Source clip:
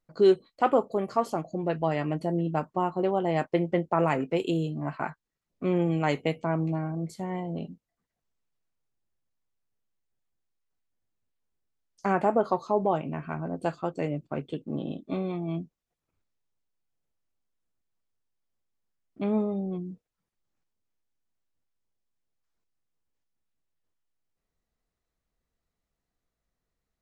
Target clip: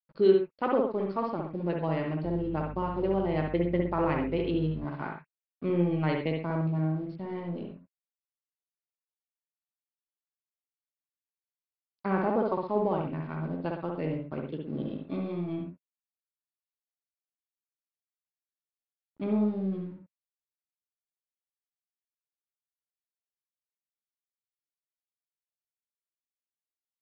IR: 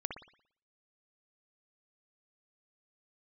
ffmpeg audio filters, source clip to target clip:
-filter_complex "[0:a]aeval=exprs='sgn(val(0))*max(abs(val(0))-0.00299,0)':c=same,equalizer=f=720:w=7.3:g=-9,aresample=11025,aresample=44100,lowshelf=f=420:g=4[s0];[1:a]atrim=start_sample=2205,atrim=end_sample=6174[s1];[s0][s1]afir=irnorm=-1:irlink=0,asettb=1/sr,asplit=3[s2][s3][s4];[s2]atrim=end=2.244[s5];[s3]atrim=start=2.24:end=4.85,asetpts=PTS-STARTPTS,afade=t=in:d=0.004:c=qsin,afade=t=out:st=2.606:d=0.004:c=qsin,aeval=exprs='val(0)+0.0141*(sin(2*PI*50*n/s)+sin(2*PI*2*50*n/s)/2+sin(2*PI*3*50*n/s)/3+sin(2*PI*4*50*n/s)/4+sin(2*PI*5*50*n/s)/5)':c=same[s6];[s4]atrim=start=4.846[s7];[s5][s6]acrossfade=d=0.004:c1=hsin:c2=qsin[s8];[s8][s7]acrossfade=d=0.004:c1=qsin:c2=hsin,volume=0.668"

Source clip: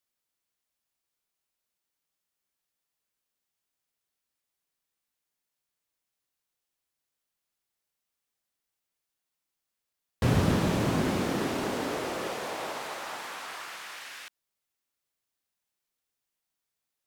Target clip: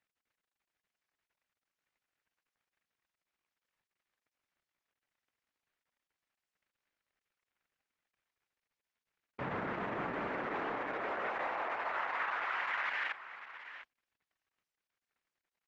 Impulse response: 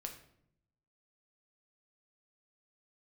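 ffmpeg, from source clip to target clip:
-filter_complex "[0:a]highpass=110,equalizer=f=900:t=o:w=2.7:g=12,acompressor=threshold=0.0316:ratio=6,alimiter=level_in=4.47:limit=0.0631:level=0:latency=1:release=194,volume=0.224,acontrast=55,acrusher=bits=10:mix=0:aa=0.000001,lowpass=f=1900:t=q:w=1.9,asplit=2[s0][s1];[s1]aecho=0:1:775:0.237[s2];[s0][s2]amix=inputs=2:normalize=0,asetrate=48000,aresample=44100" -ar 48000 -c:a libopus -b:a 10k

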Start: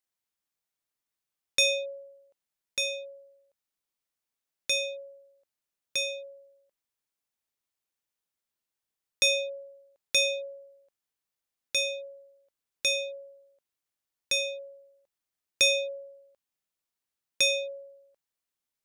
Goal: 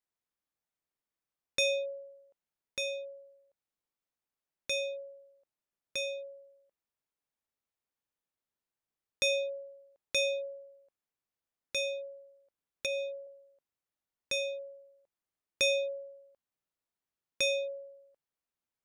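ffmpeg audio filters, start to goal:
-filter_complex "[0:a]asettb=1/sr,asplit=3[s0][s1][s2];[s0]atrim=end=12.864[s3];[s1]atrim=start=12.86:end=13.27,asetpts=PTS-STARTPTS,afade=t=in:d=0.004:c=qsin,afade=t=out:st=0.406:d=0.004:c=qsin,acrossover=split=2500[s4][s5];[s5]acompressor=threshold=0.01:ratio=4:attack=1:release=60[s6];[s4][s6]amix=inputs=2:normalize=0[s7];[s2]atrim=start=13.266[s8];[s3][s7]acrossfade=d=0.004:c1=hsin:c2=qsin[s9];[s9][s8]acrossfade=d=0.004:c1=qsin:c2=hsin,highshelf=f=2300:g=-10"

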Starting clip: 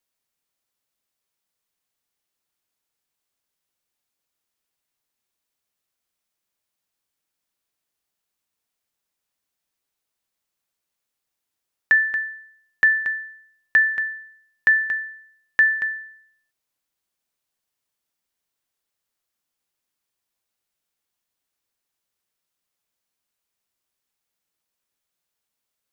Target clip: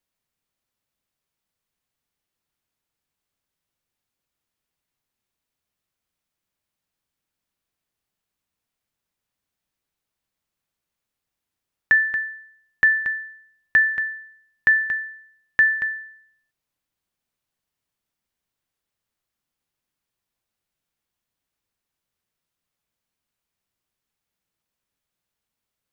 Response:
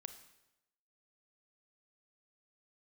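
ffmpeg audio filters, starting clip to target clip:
-af "bass=f=250:g=7,treble=f=4000:g=-4"

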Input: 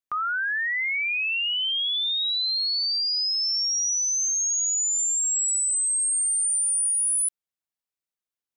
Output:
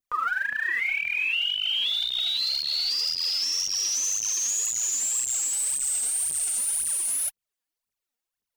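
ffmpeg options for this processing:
-af "aphaser=in_gain=1:out_gain=1:delay=4.4:decay=0.79:speed=1.9:type=triangular,adynamicequalizer=threshold=0.0141:dfrequency=2800:dqfactor=2.5:tfrequency=2800:tqfactor=2.5:attack=5:release=100:ratio=0.375:range=4:mode=boostabove:tftype=bell,alimiter=limit=0.112:level=0:latency=1:release=131"

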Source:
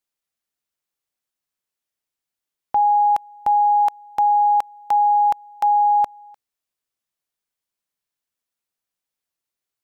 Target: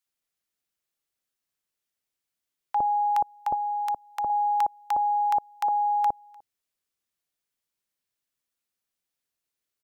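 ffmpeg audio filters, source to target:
-filter_complex "[0:a]asettb=1/sr,asplit=3[s0][s1][s2];[s0]atrim=end=3.484[s3];[s1]atrim=start=3.48:end=4.24,asetpts=PTS-STARTPTS,afade=t=in:d=0.004:c=qsin,afade=t=out:st=0.756:d=0.004:c=qsin,acrossover=split=260|3000[s4][s5][s6];[s5]acompressor=threshold=0.0447:ratio=1.5[s7];[s4][s7][s6]amix=inputs=3:normalize=0[s8];[s2]atrim=start=4.236[s9];[s3][s8]acrossfade=d=0.004:c1=hsin:c2=qsin[s10];[s10][s9]acrossfade=d=0.004:c1=qsin:c2=hsin,acrossover=split=870[s11][s12];[s11]adelay=60[s13];[s13][s12]amix=inputs=2:normalize=0"

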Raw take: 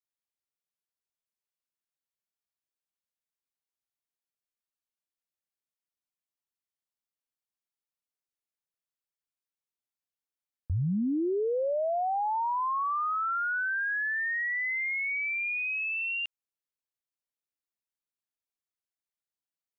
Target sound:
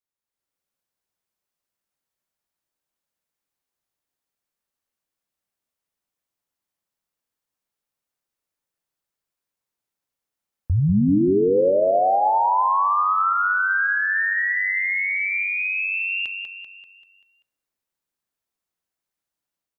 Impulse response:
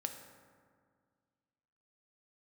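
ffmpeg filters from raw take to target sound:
-filter_complex "[0:a]dynaudnorm=f=140:g=5:m=2.24,aecho=1:1:194|388|582|776|970|1164:0.501|0.241|0.115|0.0554|0.0266|0.0128,asplit=2[s0][s1];[1:a]atrim=start_sample=2205,afade=t=out:st=0.35:d=0.01,atrim=end_sample=15876,lowpass=2100[s2];[s1][s2]afir=irnorm=-1:irlink=0,volume=0.596[s3];[s0][s3]amix=inputs=2:normalize=0,volume=0.891"

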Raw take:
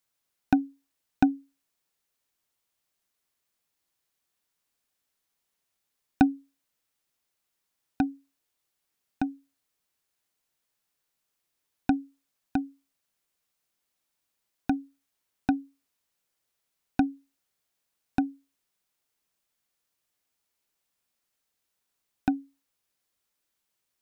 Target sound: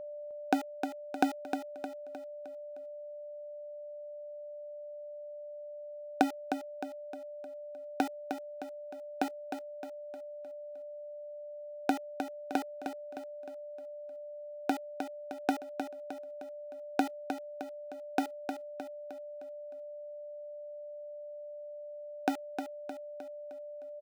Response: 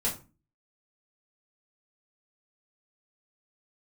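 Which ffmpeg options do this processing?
-filter_complex "[0:a]acompressor=threshold=0.00562:ratio=1.5,aeval=exprs='val(0)*gte(abs(val(0)),0.0106)':c=same,highpass=f=450:t=q:w=4.6,aeval=exprs='val(0)+0.00501*sin(2*PI*590*n/s)':c=same,asplit=2[s0][s1];[s1]aecho=0:1:308|616|924|1232|1540:0.422|0.198|0.0932|0.0438|0.0206[s2];[s0][s2]amix=inputs=2:normalize=0,volume=2"

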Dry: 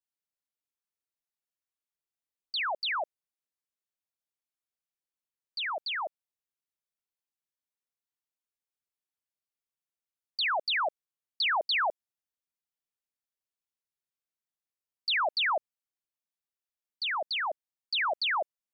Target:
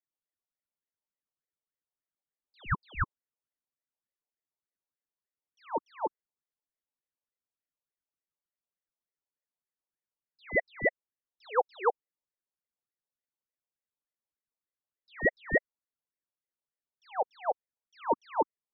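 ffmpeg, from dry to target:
-af "lowpass=f=730:t=q:w=4.9,aeval=exprs='val(0)*sin(2*PI*700*n/s+700*0.85/3.4*sin(2*PI*3.4*n/s))':c=same,volume=0.668"

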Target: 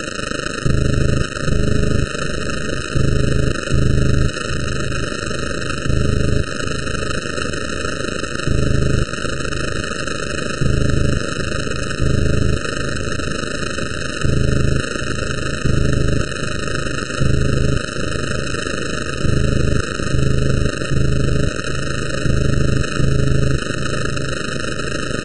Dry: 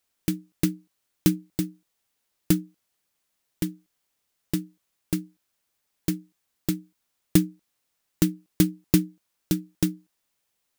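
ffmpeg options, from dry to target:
-af "aeval=exprs='val(0)+0.5*0.075*sgn(val(0))':c=same,highpass=f=160:w=0.5412,highpass=f=160:w=1.3066,highshelf=f=2400:g=-5.5,acompressor=threshold=0.0562:ratio=3,aresample=11025,asoftclip=type=hard:threshold=0.0473,aresample=44100,aresample=8000,aresample=44100,acrusher=bits=3:dc=4:mix=0:aa=0.000001,tremolo=f=60:d=0.788,aecho=1:1:329|658|987|1316|1645|1974:0.335|0.178|0.0941|0.0499|0.0264|0.014,asetrate=18846,aresample=44100,alimiter=level_in=22.4:limit=0.891:release=50:level=0:latency=1,afftfilt=real='re*eq(mod(floor(b*sr/1024/620),2),0)':imag='im*eq(mod(floor(b*sr/1024/620),2),0)':win_size=1024:overlap=0.75,volume=0.668"

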